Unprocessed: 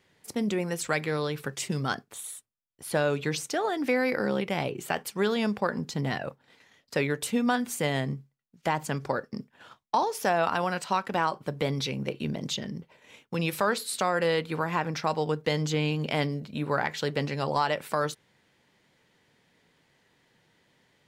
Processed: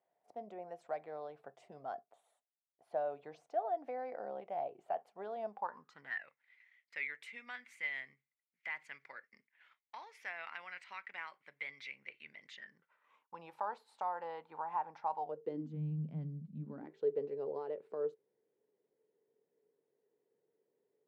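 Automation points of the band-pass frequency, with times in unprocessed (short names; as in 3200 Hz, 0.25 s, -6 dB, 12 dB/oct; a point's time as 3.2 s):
band-pass, Q 8.9
5.47 s 690 Hz
6.26 s 2100 Hz
12.42 s 2100 Hz
13.43 s 860 Hz
15.19 s 860 Hz
15.8 s 170 Hz
16.6 s 170 Hz
17.01 s 430 Hz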